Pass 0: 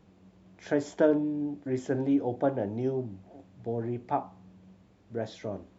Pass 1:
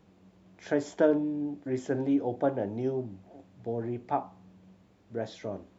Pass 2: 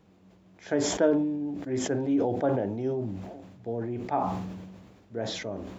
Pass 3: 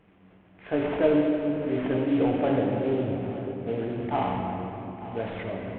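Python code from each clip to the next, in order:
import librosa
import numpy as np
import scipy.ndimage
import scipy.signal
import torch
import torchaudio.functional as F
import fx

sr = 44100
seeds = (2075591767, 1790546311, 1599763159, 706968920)

y1 = fx.low_shelf(x, sr, hz=140.0, db=-4.0)
y2 = fx.sustainer(y1, sr, db_per_s=38.0)
y3 = fx.cvsd(y2, sr, bps=16000)
y3 = y3 + 10.0 ** (-15.0 / 20.0) * np.pad(y3, (int(897 * sr / 1000.0), 0))[:len(y3)]
y3 = fx.room_shoebox(y3, sr, seeds[0], volume_m3=190.0, walls='hard', distance_m=0.4)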